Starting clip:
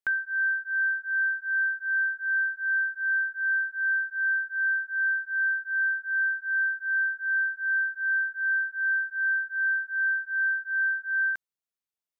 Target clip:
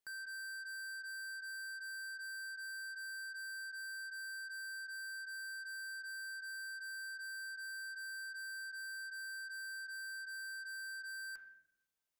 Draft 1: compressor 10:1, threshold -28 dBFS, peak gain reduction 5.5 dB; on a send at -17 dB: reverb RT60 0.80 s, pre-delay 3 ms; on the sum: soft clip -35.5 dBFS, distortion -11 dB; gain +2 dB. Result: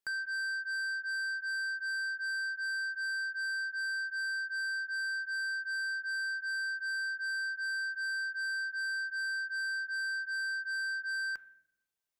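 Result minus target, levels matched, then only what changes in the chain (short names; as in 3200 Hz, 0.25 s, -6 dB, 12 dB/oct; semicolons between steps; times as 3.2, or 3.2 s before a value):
soft clip: distortion -5 dB
change: soft clip -47 dBFS, distortion -6 dB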